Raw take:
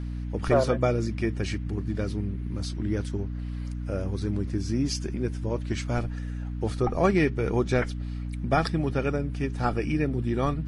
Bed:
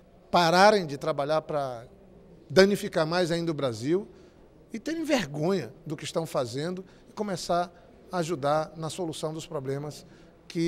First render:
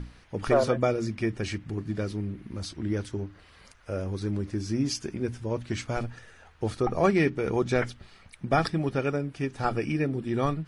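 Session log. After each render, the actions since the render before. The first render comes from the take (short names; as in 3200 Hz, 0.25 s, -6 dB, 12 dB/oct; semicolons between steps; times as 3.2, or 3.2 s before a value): notches 60/120/180/240/300 Hz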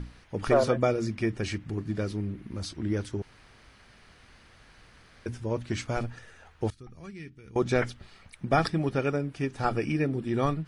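3.22–5.26 room tone; 6.7–7.56 passive tone stack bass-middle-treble 6-0-2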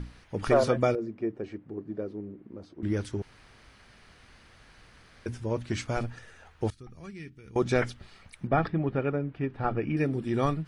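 0.95–2.83 band-pass 430 Hz, Q 1.3; 8.47–9.97 air absorption 430 m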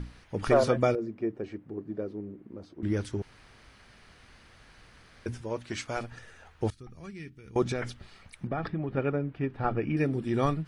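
5.41–6.12 low shelf 260 Hz -11 dB; 7.71–8.97 compressor, threshold -27 dBFS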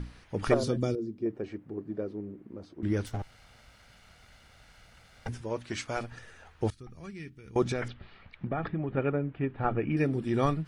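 0.54–1.26 band shelf 1200 Hz -12.5 dB 2.6 oct; 3.06–5.29 minimum comb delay 1.4 ms; 7.88–9.92 LPF 3600 Hz 24 dB/oct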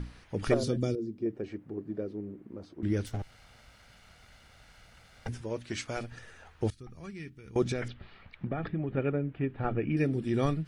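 dynamic EQ 1000 Hz, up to -7 dB, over -47 dBFS, Q 1.2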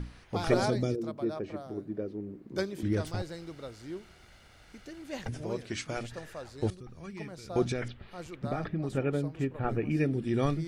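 add bed -14.5 dB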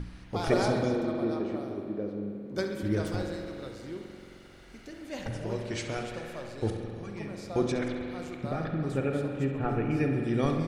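feedback echo 68 ms, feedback 57%, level -13 dB; spring tank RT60 2.7 s, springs 44 ms, chirp 25 ms, DRR 3 dB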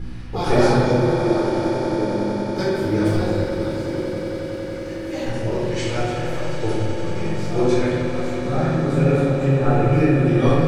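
swelling echo 92 ms, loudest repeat 8, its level -15.5 dB; shoebox room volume 610 m³, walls mixed, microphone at 4 m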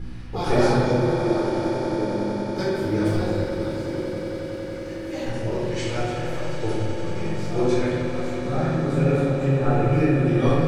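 gain -3 dB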